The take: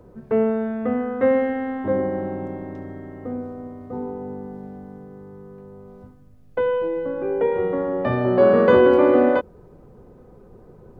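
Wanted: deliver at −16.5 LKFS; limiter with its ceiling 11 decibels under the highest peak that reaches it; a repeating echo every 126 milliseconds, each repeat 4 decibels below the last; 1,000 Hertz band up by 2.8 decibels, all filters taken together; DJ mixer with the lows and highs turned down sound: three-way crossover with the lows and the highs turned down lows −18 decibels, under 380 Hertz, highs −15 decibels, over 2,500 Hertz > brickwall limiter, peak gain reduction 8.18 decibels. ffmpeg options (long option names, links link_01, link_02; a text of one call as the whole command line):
ffmpeg -i in.wav -filter_complex "[0:a]equalizer=frequency=1000:width_type=o:gain=4,alimiter=limit=-13dB:level=0:latency=1,acrossover=split=380 2500:gain=0.126 1 0.178[link_01][link_02][link_03];[link_01][link_02][link_03]amix=inputs=3:normalize=0,aecho=1:1:126|252|378|504|630|756|882|1008|1134:0.631|0.398|0.25|0.158|0.0994|0.0626|0.0394|0.0249|0.0157,volume=12.5dB,alimiter=limit=-6.5dB:level=0:latency=1" out.wav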